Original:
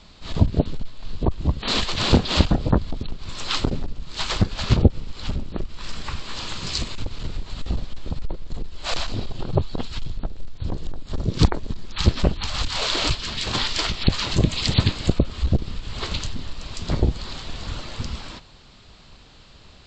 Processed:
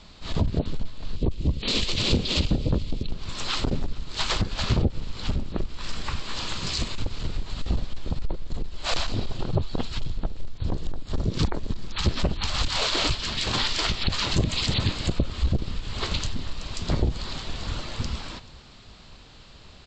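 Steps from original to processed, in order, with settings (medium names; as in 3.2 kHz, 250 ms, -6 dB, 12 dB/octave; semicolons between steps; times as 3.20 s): 1.16–3.11 s: high-order bell 1.1 kHz -9.5 dB; peak limiter -13.5 dBFS, peak gain reduction 10.5 dB; on a send: feedback delay 434 ms, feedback 47%, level -22.5 dB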